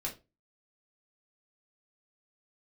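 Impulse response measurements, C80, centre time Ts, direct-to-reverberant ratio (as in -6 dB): 19.5 dB, 16 ms, -3.0 dB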